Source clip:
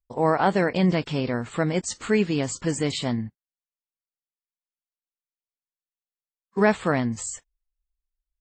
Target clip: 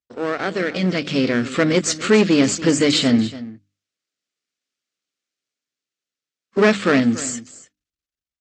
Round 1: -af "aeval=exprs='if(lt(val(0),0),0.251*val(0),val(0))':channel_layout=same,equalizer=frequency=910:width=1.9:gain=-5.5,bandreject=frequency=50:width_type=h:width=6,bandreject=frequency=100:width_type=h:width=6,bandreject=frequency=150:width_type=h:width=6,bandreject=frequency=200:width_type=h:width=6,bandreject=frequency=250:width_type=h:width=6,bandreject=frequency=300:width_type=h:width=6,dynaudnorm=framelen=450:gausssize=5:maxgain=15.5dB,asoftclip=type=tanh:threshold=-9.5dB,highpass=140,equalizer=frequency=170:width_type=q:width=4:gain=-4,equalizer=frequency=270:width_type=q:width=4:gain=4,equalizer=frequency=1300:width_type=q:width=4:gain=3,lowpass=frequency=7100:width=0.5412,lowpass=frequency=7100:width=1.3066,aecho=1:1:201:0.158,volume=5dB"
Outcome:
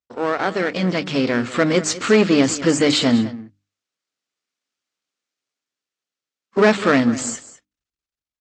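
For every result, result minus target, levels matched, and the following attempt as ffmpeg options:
echo 85 ms early; 1,000 Hz band +3.0 dB
-af "aeval=exprs='if(lt(val(0),0),0.251*val(0),val(0))':channel_layout=same,equalizer=frequency=910:width=1.9:gain=-5.5,bandreject=frequency=50:width_type=h:width=6,bandreject=frequency=100:width_type=h:width=6,bandreject=frequency=150:width_type=h:width=6,bandreject=frequency=200:width_type=h:width=6,bandreject=frequency=250:width_type=h:width=6,bandreject=frequency=300:width_type=h:width=6,dynaudnorm=framelen=450:gausssize=5:maxgain=15.5dB,asoftclip=type=tanh:threshold=-9.5dB,highpass=140,equalizer=frequency=170:width_type=q:width=4:gain=-4,equalizer=frequency=270:width_type=q:width=4:gain=4,equalizer=frequency=1300:width_type=q:width=4:gain=3,lowpass=frequency=7100:width=0.5412,lowpass=frequency=7100:width=1.3066,aecho=1:1:286:0.158,volume=5dB"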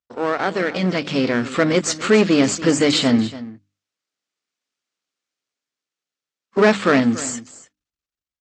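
1,000 Hz band +3.0 dB
-af "aeval=exprs='if(lt(val(0),0),0.251*val(0),val(0))':channel_layout=same,equalizer=frequency=910:width=1.9:gain=-14.5,bandreject=frequency=50:width_type=h:width=6,bandreject=frequency=100:width_type=h:width=6,bandreject=frequency=150:width_type=h:width=6,bandreject=frequency=200:width_type=h:width=6,bandreject=frequency=250:width_type=h:width=6,bandreject=frequency=300:width_type=h:width=6,dynaudnorm=framelen=450:gausssize=5:maxgain=15.5dB,asoftclip=type=tanh:threshold=-9.5dB,highpass=140,equalizer=frequency=170:width_type=q:width=4:gain=-4,equalizer=frequency=270:width_type=q:width=4:gain=4,equalizer=frequency=1300:width_type=q:width=4:gain=3,lowpass=frequency=7100:width=0.5412,lowpass=frequency=7100:width=1.3066,aecho=1:1:286:0.158,volume=5dB"

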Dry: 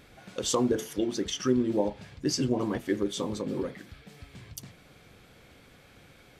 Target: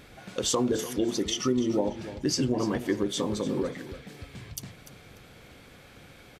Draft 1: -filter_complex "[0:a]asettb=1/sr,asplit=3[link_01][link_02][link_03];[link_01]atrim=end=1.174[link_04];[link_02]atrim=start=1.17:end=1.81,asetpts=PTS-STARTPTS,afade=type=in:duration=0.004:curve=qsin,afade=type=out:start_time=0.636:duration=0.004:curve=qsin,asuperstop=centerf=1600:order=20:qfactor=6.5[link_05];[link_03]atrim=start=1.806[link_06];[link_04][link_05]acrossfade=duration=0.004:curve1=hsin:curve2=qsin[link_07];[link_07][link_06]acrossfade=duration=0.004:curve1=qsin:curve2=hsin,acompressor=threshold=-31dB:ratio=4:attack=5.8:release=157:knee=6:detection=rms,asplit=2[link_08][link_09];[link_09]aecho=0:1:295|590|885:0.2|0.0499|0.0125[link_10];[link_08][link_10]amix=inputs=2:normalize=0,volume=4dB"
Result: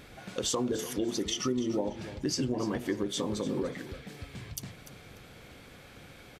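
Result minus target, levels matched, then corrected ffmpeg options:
downward compressor: peak gain reduction +5 dB
-filter_complex "[0:a]asettb=1/sr,asplit=3[link_01][link_02][link_03];[link_01]atrim=end=1.174[link_04];[link_02]atrim=start=1.17:end=1.81,asetpts=PTS-STARTPTS,afade=type=in:duration=0.004:curve=qsin,afade=type=out:start_time=0.636:duration=0.004:curve=qsin,asuperstop=centerf=1600:order=20:qfactor=6.5[link_05];[link_03]atrim=start=1.806[link_06];[link_04][link_05]acrossfade=duration=0.004:curve1=hsin:curve2=qsin[link_07];[link_07][link_06]acrossfade=duration=0.004:curve1=qsin:curve2=hsin,acompressor=threshold=-24.5dB:ratio=4:attack=5.8:release=157:knee=6:detection=rms,asplit=2[link_08][link_09];[link_09]aecho=0:1:295|590|885:0.2|0.0499|0.0125[link_10];[link_08][link_10]amix=inputs=2:normalize=0,volume=4dB"

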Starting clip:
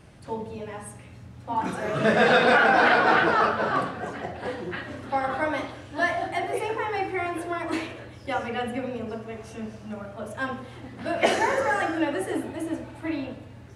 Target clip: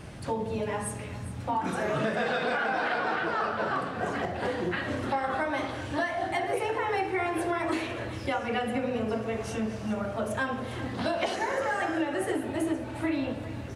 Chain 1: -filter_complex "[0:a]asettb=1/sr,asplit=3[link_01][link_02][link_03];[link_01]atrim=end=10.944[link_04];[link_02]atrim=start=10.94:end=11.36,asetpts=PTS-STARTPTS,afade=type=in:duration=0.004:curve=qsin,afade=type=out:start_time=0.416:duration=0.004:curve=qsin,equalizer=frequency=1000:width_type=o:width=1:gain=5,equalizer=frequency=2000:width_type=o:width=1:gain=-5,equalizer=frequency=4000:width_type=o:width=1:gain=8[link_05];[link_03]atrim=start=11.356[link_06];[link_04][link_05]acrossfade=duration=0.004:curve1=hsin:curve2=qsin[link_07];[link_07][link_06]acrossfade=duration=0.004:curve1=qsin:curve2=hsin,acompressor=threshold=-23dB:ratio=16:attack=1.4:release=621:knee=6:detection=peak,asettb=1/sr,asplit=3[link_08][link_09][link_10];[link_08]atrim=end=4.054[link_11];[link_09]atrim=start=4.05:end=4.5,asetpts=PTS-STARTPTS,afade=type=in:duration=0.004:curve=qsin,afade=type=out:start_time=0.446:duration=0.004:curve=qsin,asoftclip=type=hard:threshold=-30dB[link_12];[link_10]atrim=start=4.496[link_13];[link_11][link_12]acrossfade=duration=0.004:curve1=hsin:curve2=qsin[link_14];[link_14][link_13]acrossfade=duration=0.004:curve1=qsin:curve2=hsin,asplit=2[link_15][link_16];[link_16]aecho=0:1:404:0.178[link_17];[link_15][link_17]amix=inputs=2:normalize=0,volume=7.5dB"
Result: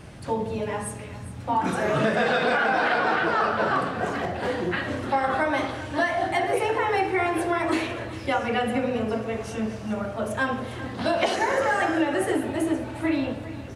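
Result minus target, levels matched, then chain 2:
downward compressor: peak gain reduction −6 dB
-filter_complex "[0:a]asettb=1/sr,asplit=3[link_01][link_02][link_03];[link_01]atrim=end=10.944[link_04];[link_02]atrim=start=10.94:end=11.36,asetpts=PTS-STARTPTS,afade=type=in:duration=0.004:curve=qsin,afade=type=out:start_time=0.416:duration=0.004:curve=qsin,equalizer=frequency=1000:width_type=o:width=1:gain=5,equalizer=frequency=2000:width_type=o:width=1:gain=-5,equalizer=frequency=4000:width_type=o:width=1:gain=8[link_05];[link_03]atrim=start=11.356[link_06];[link_04][link_05]acrossfade=duration=0.004:curve1=hsin:curve2=qsin[link_07];[link_07][link_06]acrossfade=duration=0.004:curve1=qsin:curve2=hsin,acompressor=threshold=-29.5dB:ratio=16:attack=1.4:release=621:knee=6:detection=peak,asettb=1/sr,asplit=3[link_08][link_09][link_10];[link_08]atrim=end=4.054[link_11];[link_09]atrim=start=4.05:end=4.5,asetpts=PTS-STARTPTS,afade=type=in:duration=0.004:curve=qsin,afade=type=out:start_time=0.446:duration=0.004:curve=qsin,asoftclip=type=hard:threshold=-30dB[link_12];[link_10]atrim=start=4.496[link_13];[link_11][link_12]acrossfade=duration=0.004:curve1=hsin:curve2=qsin[link_14];[link_14][link_13]acrossfade=duration=0.004:curve1=qsin:curve2=hsin,asplit=2[link_15][link_16];[link_16]aecho=0:1:404:0.178[link_17];[link_15][link_17]amix=inputs=2:normalize=0,volume=7.5dB"

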